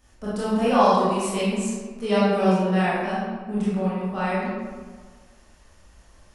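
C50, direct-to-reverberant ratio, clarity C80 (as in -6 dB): -3.0 dB, -10.0 dB, 0.0 dB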